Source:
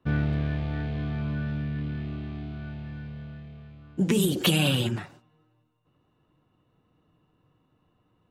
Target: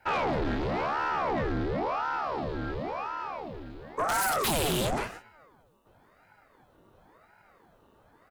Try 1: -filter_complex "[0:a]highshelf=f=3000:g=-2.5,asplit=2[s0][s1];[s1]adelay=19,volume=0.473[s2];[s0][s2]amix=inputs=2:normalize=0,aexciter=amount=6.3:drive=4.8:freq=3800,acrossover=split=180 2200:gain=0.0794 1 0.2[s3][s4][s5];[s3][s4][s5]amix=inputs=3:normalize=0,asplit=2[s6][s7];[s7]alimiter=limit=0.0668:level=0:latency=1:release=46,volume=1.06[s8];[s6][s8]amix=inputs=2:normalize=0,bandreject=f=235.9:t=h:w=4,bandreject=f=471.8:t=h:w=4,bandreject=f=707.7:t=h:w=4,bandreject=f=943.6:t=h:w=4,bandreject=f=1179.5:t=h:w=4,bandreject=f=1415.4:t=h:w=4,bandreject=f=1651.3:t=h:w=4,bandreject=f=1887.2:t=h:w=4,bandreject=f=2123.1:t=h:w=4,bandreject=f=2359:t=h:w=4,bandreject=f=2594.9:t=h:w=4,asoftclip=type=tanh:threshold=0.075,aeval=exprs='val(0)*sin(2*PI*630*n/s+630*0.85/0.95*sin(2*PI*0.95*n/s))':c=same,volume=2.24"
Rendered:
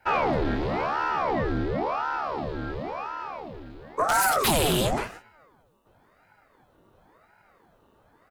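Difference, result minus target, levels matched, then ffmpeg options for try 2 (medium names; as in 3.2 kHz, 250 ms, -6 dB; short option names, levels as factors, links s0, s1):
saturation: distortion -5 dB
-filter_complex "[0:a]highshelf=f=3000:g=-2.5,asplit=2[s0][s1];[s1]adelay=19,volume=0.473[s2];[s0][s2]amix=inputs=2:normalize=0,aexciter=amount=6.3:drive=4.8:freq=3800,acrossover=split=180 2200:gain=0.0794 1 0.2[s3][s4][s5];[s3][s4][s5]amix=inputs=3:normalize=0,asplit=2[s6][s7];[s7]alimiter=limit=0.0668:level=0:latency=1:release=46,volume=1.06[s8];[s6][s8]amix=inputs=2:normalize=0,bandreject=f=235.9:t=h:w=4,bandreject=f=471.8:t=h:w=4,bandreject=f=707.7:t=h:w=4,bandreject=f=943.6:t=h:w=4,bandreject=f=1179.5:t=h:w=4,bandreject=f=1415.4:t=h:w=4,bandreject=f=1651.3:t=h:w=4,bandreject=f=1887.2:t=h:w=4,bandreject=f=2123.1:t=h:w=4,bandreject=f=2359:t=h:w=4,bandreject=f=2594.9:t=h:w=4,asoftclip=type=tanh:threshold=0.0335,aeval=exprs='val(0)*sin(2*PI*630*n/s+630*0.85/0.95*sin(2*PI*0.95*n/s))':c=same,volume=2.24"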